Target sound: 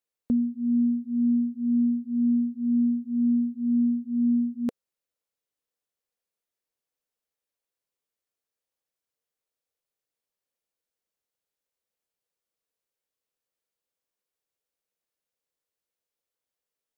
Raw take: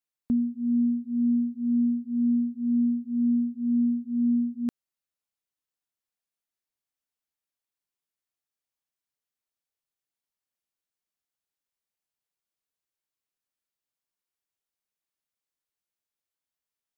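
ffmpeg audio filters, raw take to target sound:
ffmpeg -i in.wav -af "equalizer=frequency=490:width=2.4:gain=10.5" out.wav

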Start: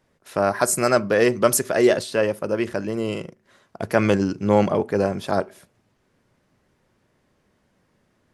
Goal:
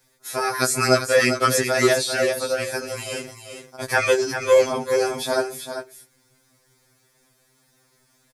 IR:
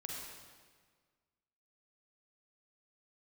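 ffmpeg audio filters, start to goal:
-filter_complex "[0:a]crystalizer=i=7:c=0,acrossover=split=4500[link_01][link_02];[link_02]acompressor=threshold=-26dB:ratio=4:attack=1:release=60[link_03];[link_01][link_03]amix=inputs=2:normalize=0,bandreject=frequency=2900:width=5.7,asplit=2[link_04][link_05];[link_05]aecho=0:1:395:0.376[link_06];[link_04][link_06]amix=inputs=2:normalize=0,afftfilt=real='re*2.45*eq(mod(b,6),0)':imag='im*2.45*eq(mod(b,6),0)':win_size=2048:overlap=0.75"

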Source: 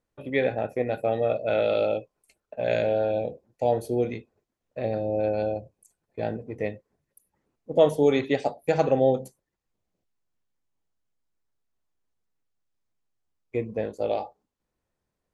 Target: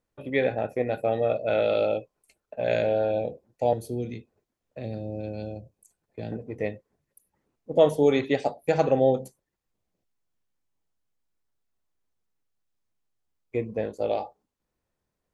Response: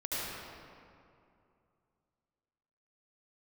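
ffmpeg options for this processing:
-filter_complex "[0:a]asettb=1/sr,asplit=3[link_01][link_02][link_03];[link_01]atrim=end=3.734[link_04];[link_02]atrim=start=3.73:end=6.32,asetpts=PTS-STARTPTS,afade=type=in:duration=0.004:curve=qsin,afade=type=out:start_time=2.586:duration=0.004:curve=qsin,acrossover=split=310|3000[link_05][link_06][link_07];[link_06]acompressor=threshold=-40dB:ratio=6[link_08];[link_05][link_08][link_07]amix=inputs=3:normalize=0[link_09];[link_03]atrim=start=6.316[link_10];[link_04][link_09]acrossfade=duration=0.004:curve1=hsin:curve2=qsin[link_11];[link_11][link_10]acrossfade=duration=0.004:curve1=qsin:curve2=hsin"

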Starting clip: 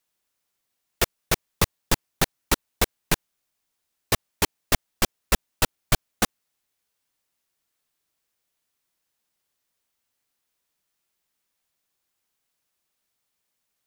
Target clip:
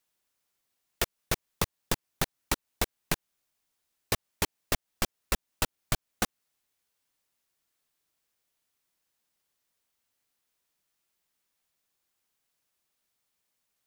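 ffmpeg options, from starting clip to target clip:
ffmpeg -i in.wav -af "acompressor=threshold=-23dB:ratio=6,volume=-1.5dB" out.wav

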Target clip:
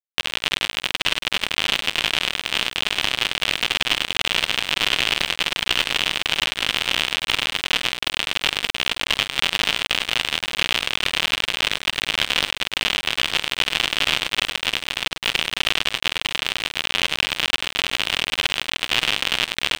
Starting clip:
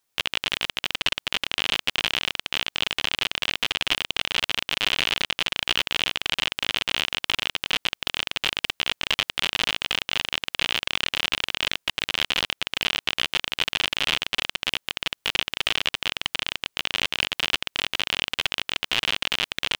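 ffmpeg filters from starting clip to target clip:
ffmpeg -i in.wav -af "aecho=1:1:49|101|897:0.126|0.224|0.266,aeval=exprs='sgn(val(0))*max(abs(val(0))-0.0188,0)':channel_layout=same,alimiter=limit=-10.5dB:level=0:latency=1:release=26,volume=8dB" out.wav

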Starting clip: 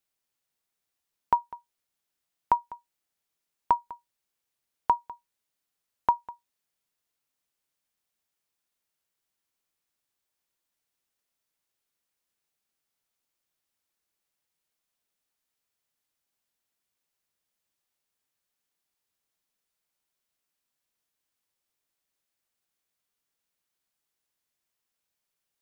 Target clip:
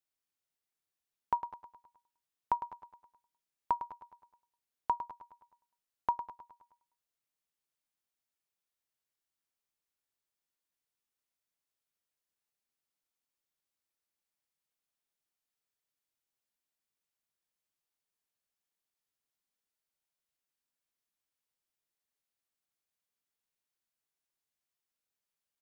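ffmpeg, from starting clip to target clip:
ffmpeg -i in.wav -af "aecho=1:1:105|210|315|420|525|630:0.282|0.149|0.0792|0.042|0.0222|0.0118,volume=-8dB" out.wav

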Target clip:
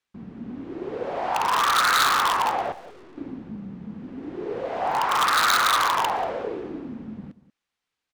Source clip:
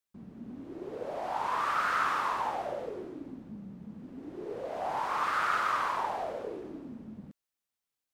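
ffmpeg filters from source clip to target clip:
ffmpeg -i in.wav -filter_complex "[0:a]lowpass=2400,bandreject=frequency=610:width=12,aeval=exprs='0.0531*(abs(mod(val(0)/0.0531+3,4)-2)-1)':channel_layout=same,crystalizer=i=4.5:c=0,asettb=1/sr,asplit=3[link_01][link_02][link_03];[link_01]atrim=end=2.724[link_04];[link_02]atrim=start=2.72:end=3.18,asetpts=PTS-STARTPTS,afade=type=in:duration=0.004:curve=qsin,afade=type=out:start_time=0.456:duration=0.004:curve=qsin,aeval=exprs='(tanh(562*val(0)+0.7)-tanh(0.7))/562':channel_layout=same[link_05];[link_03]atrim=start=3.176[link_06];[link_04][link_05]acrossfade=duration=0.004:curve1=hsin:curve2=qsin[link_07];[link_07][link_06]acrossfade=duration=0.004:curve1=qsin:curve2=hsin,asplit=2[link_08][link_09];[link_09]adelay=186.6,volume=-17dB,highshelf=frequency=4000:gain=-4.2[link_10];[link_08][link_10]amix=inputs=2:normalize=0,volume=8dB" out.wav

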